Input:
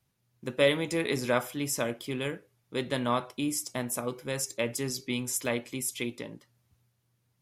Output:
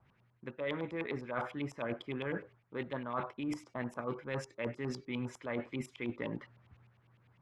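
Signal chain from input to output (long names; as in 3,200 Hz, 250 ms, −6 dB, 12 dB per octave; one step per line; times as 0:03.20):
auto-filter low-pass saw up 9.9 Hz 900–2,900 Hz
dynamic equaliser 2,700 Hz, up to −4 dB, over −47 dBFS, Q 1.3
reversed playback
downward compressor 12 to 1, threshold −42 dBFS, peak gain reduction 24 dB
reversed playback
level +7.5 dB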